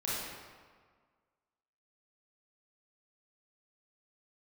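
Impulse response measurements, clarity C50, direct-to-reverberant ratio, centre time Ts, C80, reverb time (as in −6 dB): −3.5 dB, −8.5 dB, 116 ms, 0.0 dB, 1.7 s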